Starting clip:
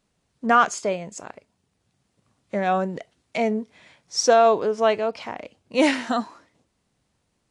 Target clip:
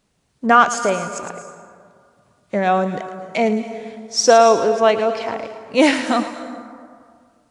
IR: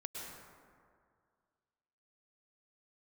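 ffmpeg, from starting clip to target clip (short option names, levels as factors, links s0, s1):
-filter_complex "[0:a]asplit=2[s0][s1];[1:a]atrim=start_sample=2205,highshelf=f=5600:g=12,adelay=110[s2];[s1][s2]afir=irnorm=-1:irlink=0,volume=0.316[s3];[s0][s3]amix=inputs=2:normalize=0,volume=1.78"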